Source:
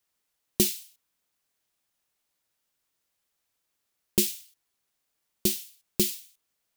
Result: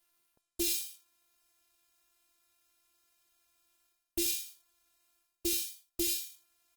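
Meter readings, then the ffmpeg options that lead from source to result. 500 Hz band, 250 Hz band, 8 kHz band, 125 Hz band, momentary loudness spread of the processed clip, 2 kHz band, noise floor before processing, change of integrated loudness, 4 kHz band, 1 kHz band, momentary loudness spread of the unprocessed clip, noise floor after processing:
-8.0 dB, -8.0 dB, -4.0 dB, under -15 dB, 14 LU, -2.5 dB, -80 dBFS, -5.5 dB, -4.0 dB, no reading, 14 LU, under -85 dBFS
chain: -af "lowshelf=f=130:g=6.5,areverse,acompressor=threshold=0.0178:ratio=12,areverse,afftfilt=real='hypot(re,im)*cos(PI*b)':imag='0':win_size=512:overlap=0.75,aecho=1:1:24|80:0.355|0.282,volume=2.82" -ar 48000 -c:a libopus -b:a 20k

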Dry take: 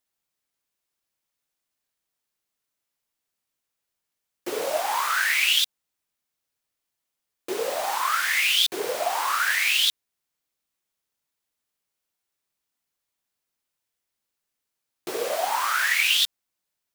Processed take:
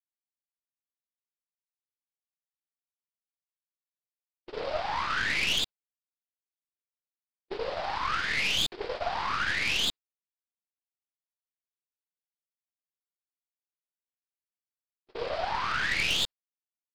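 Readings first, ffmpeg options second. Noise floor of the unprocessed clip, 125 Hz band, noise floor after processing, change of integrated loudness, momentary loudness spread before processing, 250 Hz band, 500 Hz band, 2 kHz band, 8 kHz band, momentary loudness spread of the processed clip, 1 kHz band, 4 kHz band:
-83 dBFS, no reading, under -85 dBFS, -6.5 dB, 11 LU, -2.5 dB, -6.0 dB, -6.0 dB, -10.5 dB, 10 LU, -5.5 dB, -6.5 dB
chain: -af "aresample=11025,aresample=44100,aeval=exprs='(tanh(10*val(0)+0.7)-tanh(0.7))/10':c=same,agate=range=0.00355:threshold=0.0251:ratio=16:detection=peak,volume=0.841"

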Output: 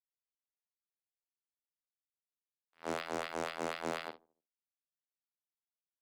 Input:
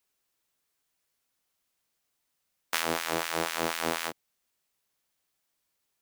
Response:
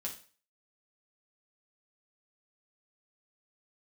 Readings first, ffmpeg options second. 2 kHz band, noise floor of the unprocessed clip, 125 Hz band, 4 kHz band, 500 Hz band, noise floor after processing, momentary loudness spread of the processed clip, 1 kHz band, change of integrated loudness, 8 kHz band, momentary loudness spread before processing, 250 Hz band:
-10.5 dB, -80 dBFS, -9.0 dB, -13.0 dB, -5.5 dB, under -85 dBFS, 9 LU, -7.5 dB, -9.0 dB, -15.5 dB, 4 LU, -6.5 dB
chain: -filter_complex "[0:a]highshelf=f=2100:g=-2.5,acrossover=split=170[s0][s1];[s1]alimiter=limit=0.141:level=0:latency=1:release=89[s2];[s0][s2]amix=inputs=2:normalize=0,aeval=exprs='val(0)*gte(abs(val(0)),0.0158)':c=same,highpass=130,aresample=11025,aresample=44100,aeval=exprs='0.075*(abs(mod(val(0)/0.075+3,4)-2)-1)':c=same,agate=range=0.0126:threshold=0.0158:ratio=16:detection=peak,asplit=2[s3][s4];[s4]adelay=50,volume=0.211[s5];[s3][s5]amix=inputs=2:normalize=0,asplit=2[s6][s7];[s7]adelay=74,lowpass=f=820:p=1,volume=0.0891,asplit=2[s8][s9];[s9]adelay=74,lowpass=f=820:p=1,volume=0.5,asplit=2[s10][s11];[s11]adelay=74,lowpass=f=820:p=1,volume=0.5,asplit=2[s12][s13];[s13]adelay=74,lowpass=f=820:p=1,volume=0.5[s14];[s6][s8][s10][s12][s14]amix=inputs=5:normalize=0,volume=0.794"

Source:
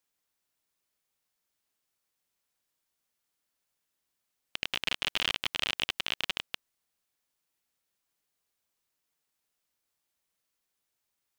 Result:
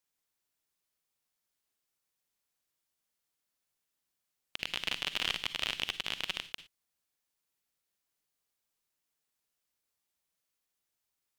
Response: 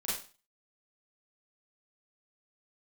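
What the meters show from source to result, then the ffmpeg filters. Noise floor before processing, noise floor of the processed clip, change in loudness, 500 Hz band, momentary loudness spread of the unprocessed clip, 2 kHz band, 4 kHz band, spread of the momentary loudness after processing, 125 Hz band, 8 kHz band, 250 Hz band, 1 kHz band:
-83 dBFS, -85 dBFS, -3.0 dB, -3.5 dB, 11 LU, -3.0 dB, -3.0 dB, 11 LU, -2.5 dB, -2.0 dB, -3.0 dB, -3.5 dB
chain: -filter_complex "[0:a]asplit=2[s0][s1];[s1]equalizer=f=800:w=0.43:g=-11.5[s2];[1:a]atrim=start_sample=2205,afade=t=out:st=0.15:d=0.01,atrim=end_sample=7056,asetrate=37485,aresample=44100[s3];[s2][s3]afir=irnorm=-1:irlink=0,volume=0.299[s4];[s0][s4]amix=inputs=2:normalize=0,volume=0.631"

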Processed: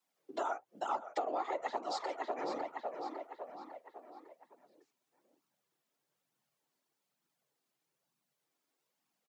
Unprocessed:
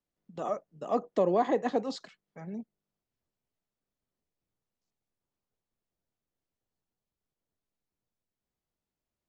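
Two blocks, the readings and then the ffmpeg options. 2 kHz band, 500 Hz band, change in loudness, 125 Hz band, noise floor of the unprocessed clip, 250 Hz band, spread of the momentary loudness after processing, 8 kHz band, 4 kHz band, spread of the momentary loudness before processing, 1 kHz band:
-0.5 dB, -8.5 dB, -8.5 dB, under -20 dB, under -85 dBFS, -13.0 dB, 15 LU, no reading, -0.5 dB, 17 LU, -1.5 dB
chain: -filter_complex "[0:a]afftfilt=real='hypot(re,im)*cos(2*PI*random(0))':imag='hypot(re,im)*sin(2*PI*random(1))':win_size=512:overlap=0.75,lowshelf=f=390:g=-9.5,afreqshift=120,asplit=2[s0][s1];[s1]adelay=553,lowpass=f=4400:p=1,volume=0.251,asplit=2[s2][s3];[s3]adelay=553,lowpass=f=4400:p=1,volume=0.51,asplit=2[s4][s5];[s5]adelay=553,lowpass=f=4400:p=1,volume=0.51,asplit=2[s6][s7];[s7]adelay=553,lowpass=f=4400:p=1,volume=0.51,asplit=2[s8][s9];[s9]adelay=553,lowpass=f=4400:p=1,volume=0.51[s10];[s0][s2][s4][s6][s8][s10]amix=inputs=6:normalize=0,aeval=exprs='0.0841*(cos(1*acos(clip(val(0)/0.0841,-1,1)))-cos(1*PI/2))+0.0015*(cos(2*acos(clip(val(0)/0.0841,-1,1)))-cos(2*PI/2))':c=same,flanger=delay=0.7:depth=2.5:regen=-31:speed=1.1:shape=triangular,highpass=170,acompressor=threshold=0.00282:ratio=10,volume=7.94"

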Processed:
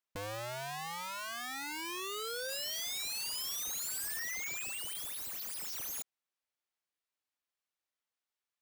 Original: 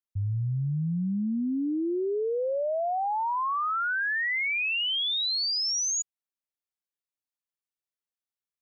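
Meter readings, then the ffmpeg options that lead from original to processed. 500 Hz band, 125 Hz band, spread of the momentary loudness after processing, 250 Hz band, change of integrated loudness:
-15.0 dB, -22.5 dB, 5 LU, -23.5 dB, -10.0 dB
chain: -filter_complex "[0:a]asplit=2[s0][s1];[s1]highpass=f=720:p=1,volume=3.16,asoftclip=type=tanh:threshold=0.0596[s2];[s0][s2]amix=inputs=2:normalize=0,lowpass=f=3300:p=1,volume=0.501,aeval=exprs='(mod(56.2*val(0)+1,2)-1)/56.2':c=same"

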